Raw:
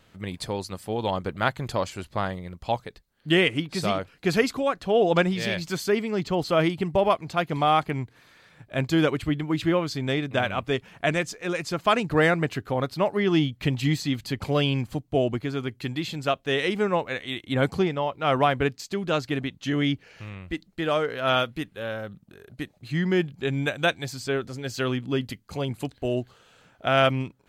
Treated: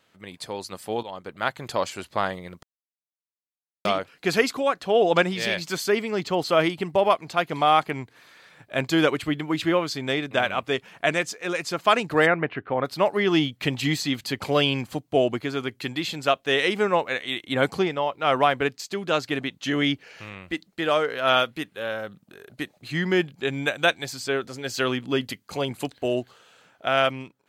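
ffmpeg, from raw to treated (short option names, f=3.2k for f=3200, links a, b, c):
-filter_complex "[0:a]asplit=3[a][b][c];[a]afade=t=out:st=12.25:d=0.02[d];[b]lowpass=f=2.6k:w=0.5412,lowpass=f=2.6k:w=1.3066,afade=t=in:st=12.25:d=0.02,afade=t=out:st=12.84:d=0.02[e];[c]afade=t=in:st=12.84:d=0.02[f];[d][e][f]amix=inputs=3:normalize=0,asplit=4[g][h][i][j];[g]atrim=end=1.03,asetpts=PTS-STARTPTS,afade=t=out:st=1.026:d=0.004:c=hsin:silence=0.16788[k];[h]atrim=start=1.03:end=2.63,asetpts=PTS-STARTPTS,afade=t=in:d=0.85:silence=0.16788,afade=t=out:st=1.596:d=0.004:c=hsin[l];[i]atrim=start=2.63:end=3.85,asetpts=PTS-STARTPTS,volume=0[m];[j]atrim=start=3.85,asetpts=PTS-STARTPTS,afade=t=in:d=0.004:c=hsin[n];[k][l][m][n]concat=n=4:v=0:a=1,highpass=f=380:p=1,dynaudnorm=f=200:g=7:m=9dB,volume=-3.5dB"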